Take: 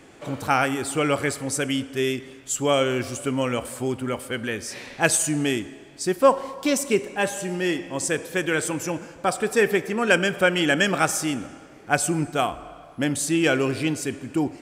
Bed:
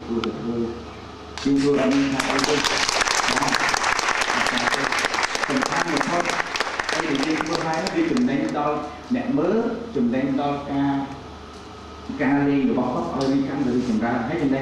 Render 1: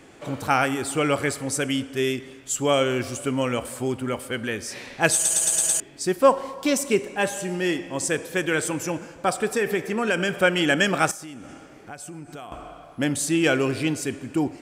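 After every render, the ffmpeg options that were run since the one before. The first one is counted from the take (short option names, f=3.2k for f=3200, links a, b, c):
-filter_complex "[0:a]asettb=1/sr,asplit=3[a][b][c];[a]atrim=end=9.454[d];[b]atrim=start=9.45:end=10.29,asetpts=PTS-STARTPTS,afade=t=in:d=0.004:c=qsin,afade=t=out:st=0.836:d=0.004:c=qsin,acompressor=threshold=-18dB:ratio=6:attack=3.2:release=140:knee=1:detection=peak[e];[c]atrim=start=10.286[f];[d][e]acrossfade=d=0.004:c1=hsin:c2=qsin[g];[g][f]acrossfade=d=0.004:c1=qsin:c2=hsin,asettb=1/sr,asplit=3[h][i][j];[h]atrim=end=11.114[k];[i]atrim=start=11.11:end=12.52,asetpts=PTS-STARTPTS,afade=t=in:d=0.004:c=qsin,afade=t=out:st=1.406:d=0.004:c=qsin,acompressor=threshold=-36dB:ratio=6:attack=3.2:release=140:knee=1:detection=peak[l];[j]atrim=start=12.516[m];[k][l]acrossfade=d=0.004:c1=hsin:c2=qsin[n];[n][m]acrossfade=d=0.004:c1=qsin:c2=hsin,asplit=7[o][p][q][r][s][t][u];[o]atrim=end=5.252[v];[p]atrim=start=5.138:end=5.252[w];[q]atrim=start=5.138:end=5.252[x];[r]atrim=start=5.138:end=5.252[y];[s]atrim=start=5.138:end=5.252[z];[t]atrim=start=5.138:end=5.252[aa];[u]atrim=start=5.798[ab];[v][w]acrossfade=d=0.004:c1=hsin:c2=hsin[ac];[ac][x]acrossfade=d=0.004:c1=hsin:c2=hsin[ad];[ad][y]acrossfade=d=0.004:c1=hsin:c2=hsin[ae];[ae][z]acrossfade=d=0.004:c1=hsin:c2=hsin[af];[af][aa]acrossfade=d=0.004:c1=hsin:c2=hsin[ag];[ag][ab]acrossfade=d=0.004:c1=hsin:c2=hsin"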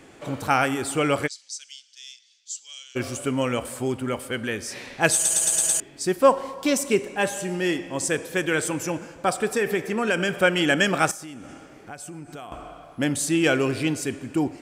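-filter_complex "[0:a]asplit=3[a][b][c];[a]afade=t=out:st=1.26:d=0.02[d];[b]asuperpass=centerf=5100:order=4:qfactor=1.9,afade=t=in:st=1.26:d=0.02,afade=t=out:st=2.95:d=0.02[e];[c]afade=t=in:st=2.95:d=0.02[f];[d][e][f]amix=inputs=3:normalize=0"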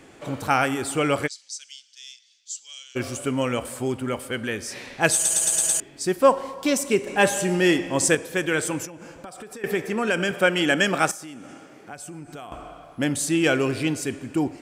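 -filter_complex "[0:a]asettb=1/sr,asplit=3[a][b][c];[a]atrim=end=7.074[d];[b]atrim=start=7.07:end=8.15,asetpts=PTS-STARTPTS,afade=t=in:d=0.004:c=qsin,afade=t=out:st=1.076:d=0.004:c=qsin,acontrast=38[e];[c]atrim=start=8.146[f];[d][e]acrossfade=d=0.004:c1=hsin:c2=qsin[g];[g][f]acrossfade=d=0.004:c1=qsin:c2=hsin,asettb=1/sr,asplit=3[h][i][j];[h]atrim=end=8.854[k];[i]atrim=start=8.85:end=9.64,asetpts=PTS-STARTPTS,afade=t=in:d=0.004:c=qsin,afade=t=out:st=0.786:d=0.004:c=qsin,acompressor=threshold=-35dB:ratio=16:attack=3.2:release=140:knee=1:detection=peak[l];[j]atrim=start=9.636[m];[k][l]acrossfade=d=0.004:c1=hsin:c2=qsin[n];[n][m]acrossfade=d=0.004:c1=qsin:c2=hsin,asettb=1/sr,asplit=3[o][p][q];[o]atrim=end=10.314[r];[p]atrim=start=10.31:end=11.93,asetpts=PTS-STARTPTS,afade=t=in:d=0.004:c=qsin,afade=t=out:st=1.616:d=0.004:c=qsin,highpass=140[s];[q]atrim=start=11.926[t];[r][s]acrossfade=d=0.004:c1=hsin:c2=qsin[u];[u][t]acrossfade=d=0.004:c1=qsin:c2=hsin"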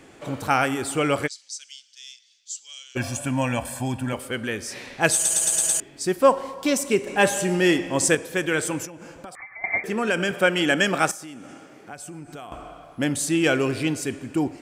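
-filter_complex "[0:a]asettb=1/sr,asplit=3[a][b][c];[a]atrim=end=2.974[d];[b]atrim=start=2.97:end=4.13,asetpts=PTS-STARTPTS,afade=t=in:d=0.004:c=qsin,afade=t=out:st=1.156:d=0.004:c=qsin,aecho=1:1:1.2:0.87,atrim=end_sample=51156[e];[c]atrim=start=4.126[f];[d][e]acrossfade=d=0.004:c1=hsin:c2=qsin[g];[g][f]acrossfade=d=0.004:c1=qsin:c2=hsin,asettb=1/sr,asplit=3[h][i][j];[h]atrim=end=9.354[k];[i]atrim=start=9.35:end=9.84,asetpts=PTS-STARTPTS,afade=t=in:d=0.004:c=qsin,afade=t=out:st=0.486:d=0.004:c=qsin,lowpass=f=2.1k:t=q:w=0.5098,lowpass=f=2.1k:t=q:w=0.6013,lowpass=f=2.1k:t=q:w=0.9,lowpass=f=2.1k:t=q:w=2.563,afreqshift=-2500[l];[j]atrim=start=9.836[m];[k][l]acrossfade=d=0.004:c1=hsin:c2=qsin[n];[n][m]acrossfade=d=0.004:c1=qsin:c2=hsin"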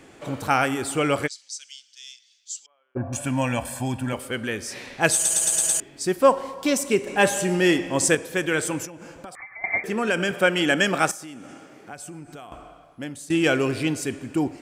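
-filter_complex "[0:a]asettb=1/sr,asplit=3[a][b][c];[a]atrim=end=2.664[d];[b]atrim=start=2.66:end=3.13,asetpts=PTS-STARTPTS,afade=t=in:d=0.004:c=qsin,afade=t=out:st=0.466:d=0.004:c=qsin,lowpass=f=1.1k:w=0.5412,lowpass=f=1.1k:w=1.3066[e];[c]atrim=start=3.126[f];[d][e]acrossfade=d=0.004:c1=hsin:c2=qsin[g];[g][f]acrossfade=d=0.004:c1=qsin:c2=hsin,asplit=2[h][i];[h]atrim=end=13.3,asetpts=PTS-STARTPTS,afade=t=out:st=12.05:d=1.25:silence=0.158489[j];[i]atrim=start=13.3,asetpts=PTS-STARTPTS,afade=t=in:d=0.004:c=hsin:silence=0.158489[k];[j][k]concat=n=2:v=0:a=1"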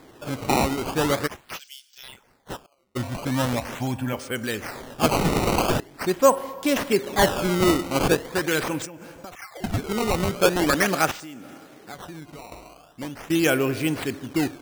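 -af "acrusher=samples=15:mix=1:aa=0.000001:lfo=1:lforange=24:lforate=0.42"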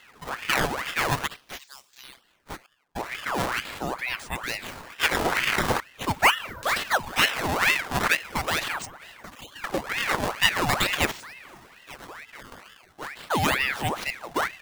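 -filter_complex "[0:a]acrossover=split=180[a][b];[a]acrusher=bits=5:dc=4:mix=0:aa=0.000001[c];[c][b]amix=inputs=2:normalize=0,aeval=exprs='val(0)*sin(2*PI*1400*n/s+1400*0.7/2.2*sin(2*PI*2.2*n/s))':c=same"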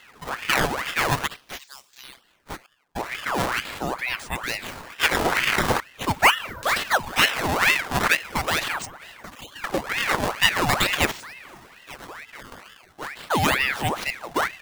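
-af "volume=2.5dB,alimiter=limit=-1dB:level=0:latency=1"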